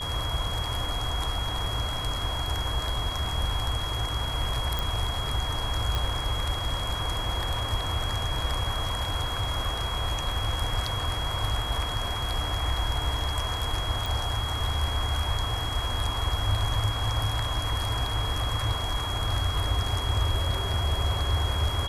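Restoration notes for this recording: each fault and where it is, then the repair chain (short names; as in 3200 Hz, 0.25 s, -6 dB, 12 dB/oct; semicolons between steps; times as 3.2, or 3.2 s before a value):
tone 3300 Hz -33 dBFS
4.79 pop
5.95 pop
14.06 pop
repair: de-click; notch 3300 Hz, Q 30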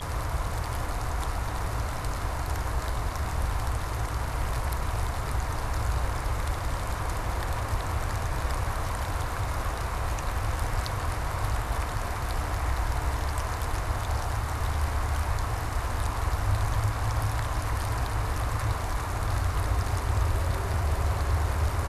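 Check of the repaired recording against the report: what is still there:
none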